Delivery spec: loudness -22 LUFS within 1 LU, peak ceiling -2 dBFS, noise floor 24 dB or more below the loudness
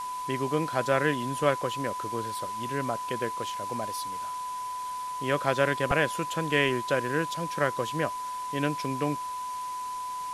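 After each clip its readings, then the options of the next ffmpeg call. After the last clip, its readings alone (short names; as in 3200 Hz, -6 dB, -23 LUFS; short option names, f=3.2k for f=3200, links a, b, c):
steady tone 1000 Hz; tone level -32 dBFS; noise floor -35 dBFS; noise floor target -54 dBFS; loudness -29.5 LUFS; peak -8.0 dBFS; loudness target -22.0 LUFS
-> -af "bandreject=f=1k:w=30"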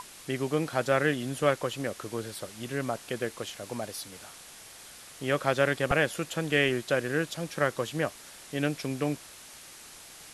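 steady tone none; noise floor -49 dBFS; noise floor target -54 dBFS
-> -af "afftdn=nr=6:nf=-49"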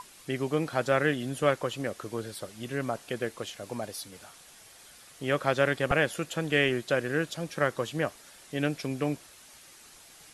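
noise floor -53 dBFS; noise floor target -54 dBFS
-> -af "afftdn=nr=6:nf=-53"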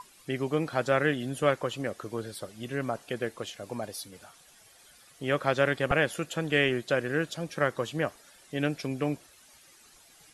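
noise floor -57 dBFS; loudness -30.0 LUFS; peak -9.0 dBFS; loudness target -22.0 LUFS
-> -af "volume=8dB,alimiter=limit=-2dB:level=0:latency=1"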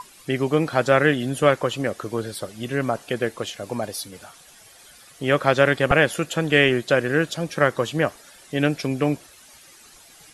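loudness -22.0 LUFS; peak -2.0 dBFS; noise floor -49 dBFS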